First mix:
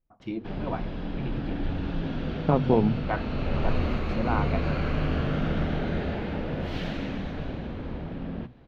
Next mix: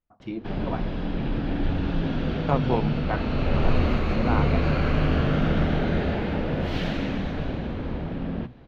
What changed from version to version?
second voice: add tilt shelving filter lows −8.5 dB, about 780 Hz
background +4.5 dB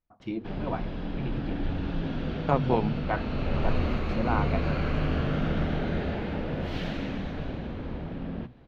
background −5.0 dB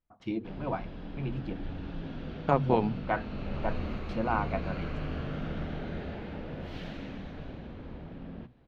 background −8.0 dB

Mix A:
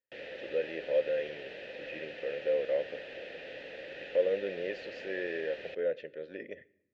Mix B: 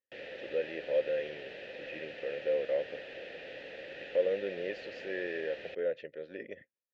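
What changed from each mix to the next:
reverb: off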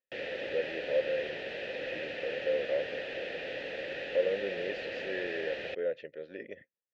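background +7.0 dB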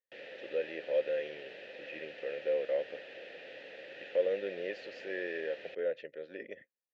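background −9.5 dB
master: add high-pass filter 250 Hz 6 dB per octave

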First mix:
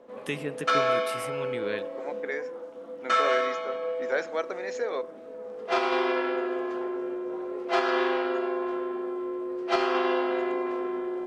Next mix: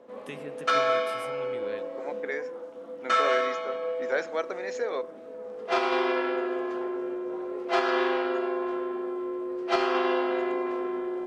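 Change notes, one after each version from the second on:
first voice −9.0 dB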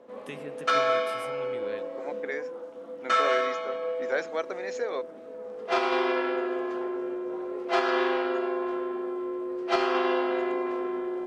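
second voice: send off

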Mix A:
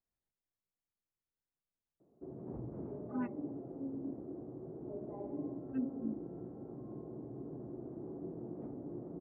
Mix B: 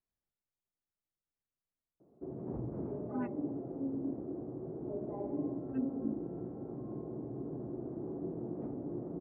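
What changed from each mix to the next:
background +4.5 dB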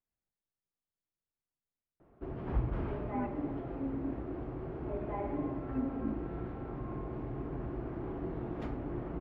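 background: remove flat-topped band-pass 290 Hz, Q 0.63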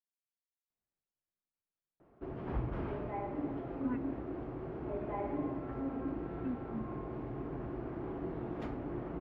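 speech: entry +0.70 s
master: add low-shelf EQ 96 Hz −7.5 dB

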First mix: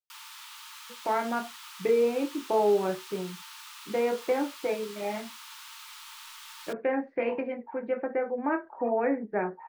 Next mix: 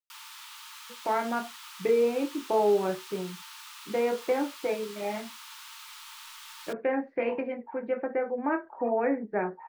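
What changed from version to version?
nothing changed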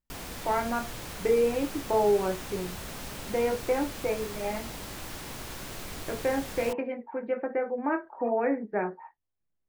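speech: entry −0.60 s
background: remove Chebyshev high-pass with heavy ripple 870 Hz, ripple 6 dB

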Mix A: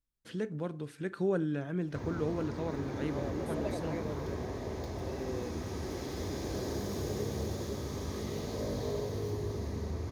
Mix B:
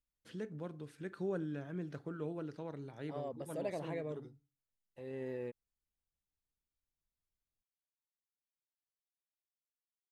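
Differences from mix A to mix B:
first voice −7.5 dB
background: muted

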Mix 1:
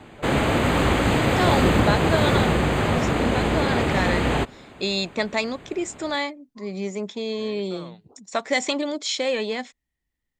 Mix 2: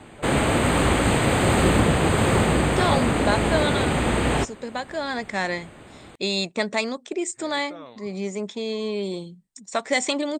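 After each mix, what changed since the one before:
second voice: entry +1.40 s
master: add parametric band 8,500 Hz +13 dB 0.22 octaves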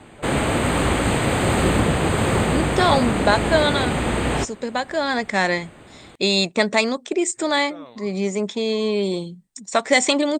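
second voice +6.0 dB

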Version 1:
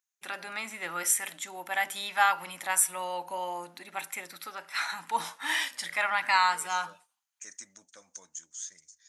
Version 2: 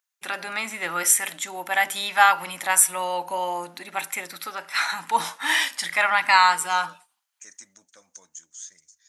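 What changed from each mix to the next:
first voice +7.5 dB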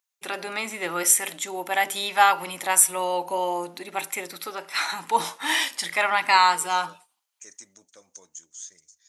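master: add graphic EQ with 15 bands 100 Hz +4 dB, 400 Hz +8 dB, 1,600 Hz −5 dB

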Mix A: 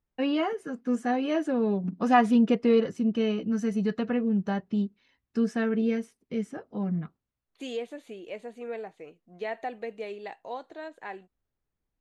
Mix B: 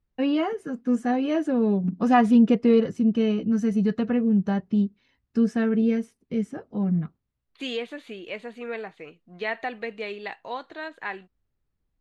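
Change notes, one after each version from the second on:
second voice: add flat-topped bell 2,200 Hz +9.5 dB 2.5 octaves
master: add low-shelf EQ 260 Hz +8.5 dB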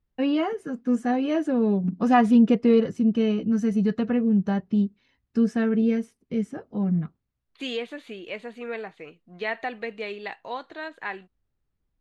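nothing changed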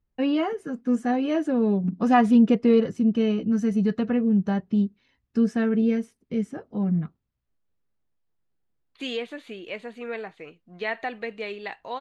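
second voice: entry +1.40 s

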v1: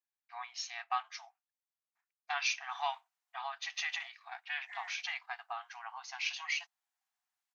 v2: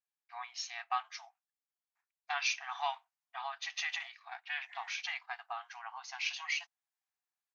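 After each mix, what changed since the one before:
second voice −7.0 dB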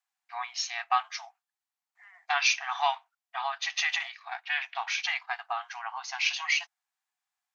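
first voice +8.5 dB
second voice: entry −2.70 s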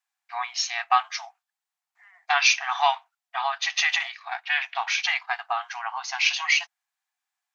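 first voice +5.5 dB

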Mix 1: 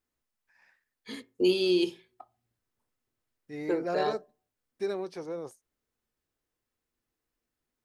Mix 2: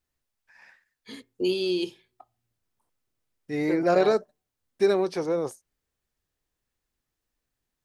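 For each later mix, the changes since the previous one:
first voice: send −6.5 dB
second voice +10.5 dB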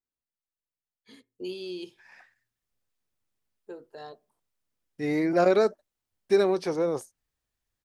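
first voice −10.5 dB
second voice: entry +1.50 s

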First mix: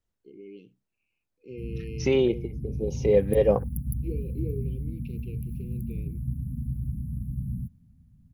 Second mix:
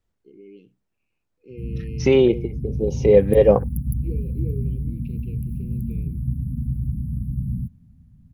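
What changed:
second voice +7.0 dB
background +6.0 dB
master: add high-shelf EQ 3,800 Hz −5.5 dB

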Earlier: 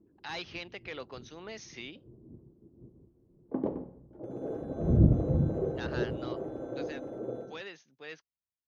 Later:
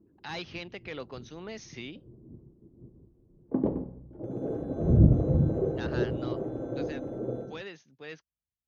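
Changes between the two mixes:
second sound: add spectral tilt +2 dB per octave
master: add low-shelf EQ 250 Hz +11.5 dB

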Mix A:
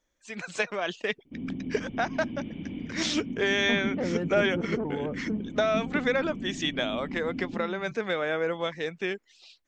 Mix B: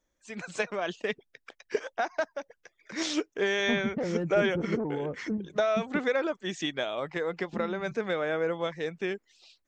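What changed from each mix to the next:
background: muted
master: add parametric band 3,000 Hz −4.5 dB 2.2 octaves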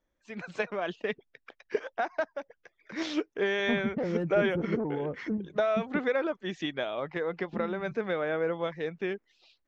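first voice: add high-frequency loss of the air 180 metres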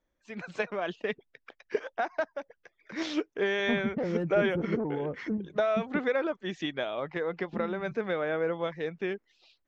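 nothing changed

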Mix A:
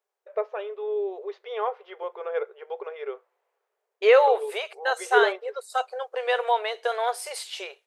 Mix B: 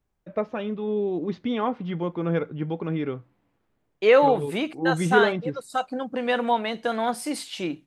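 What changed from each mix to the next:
first voice: add high-shelf EQ 2,800 Hz +9.5 dB
master: remove linear-phase brick-wall high-pass 380 Hz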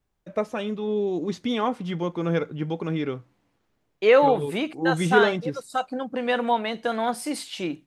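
first voice: remove high-frequency loss of the air 260 metres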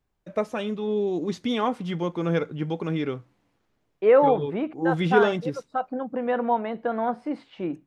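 second voice: add low-pass filter 1,300 Hz 12 dB per octave

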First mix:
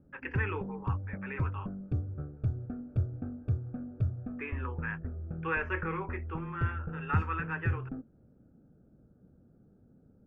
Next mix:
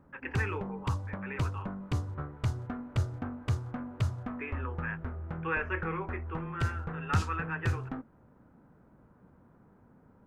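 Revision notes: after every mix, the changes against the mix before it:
background: remove moving average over 44 samples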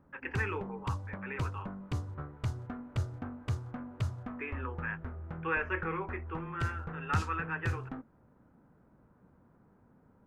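background −3.5 dB

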